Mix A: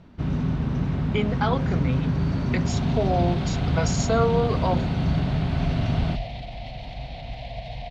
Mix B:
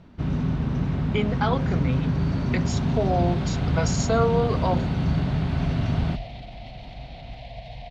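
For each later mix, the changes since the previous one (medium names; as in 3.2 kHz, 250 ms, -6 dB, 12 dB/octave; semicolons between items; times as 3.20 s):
second sound -4.0 dB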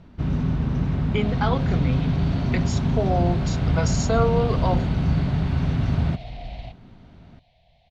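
second sound: entry -1.45 s; master: add bass shelf 79 Hz +6 dB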